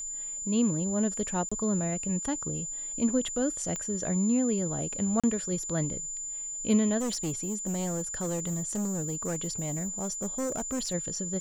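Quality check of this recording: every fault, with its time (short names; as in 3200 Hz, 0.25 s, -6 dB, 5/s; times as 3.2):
tone 7100 Hz -34 dBFS
1.49–1.51 gap 25 ms
3.76 pop -20 dBFS
5.2–5.24 gap 36 ms
6.99–10.94 clipped -27.5 dBFS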